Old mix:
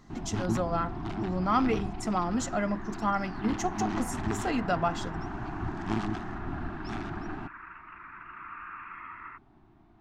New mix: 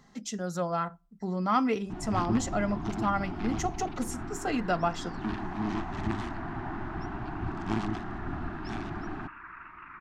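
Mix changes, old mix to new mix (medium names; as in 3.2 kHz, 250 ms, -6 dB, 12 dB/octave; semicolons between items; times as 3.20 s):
first sound: entry +1.80 s; second sound: entry +1.90 s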